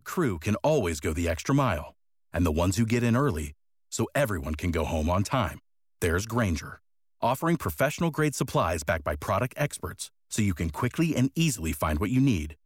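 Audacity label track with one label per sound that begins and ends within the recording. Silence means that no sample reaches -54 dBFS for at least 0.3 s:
2.330000	3.530000	sound
3.920000	5.590000	sound
6.010000	6.780000	sound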